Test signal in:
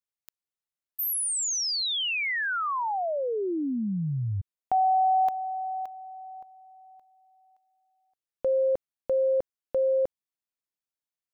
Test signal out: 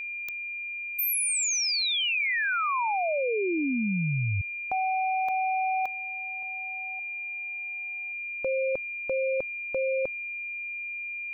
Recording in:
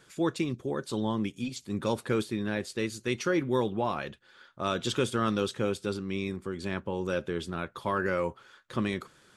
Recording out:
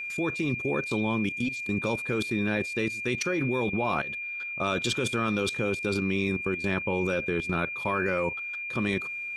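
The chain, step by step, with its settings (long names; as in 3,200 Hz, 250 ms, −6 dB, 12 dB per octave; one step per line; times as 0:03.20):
output level in coarse steps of 18 dB
steady tone 2,400 Hz −41 dBFS
level +8.5 dB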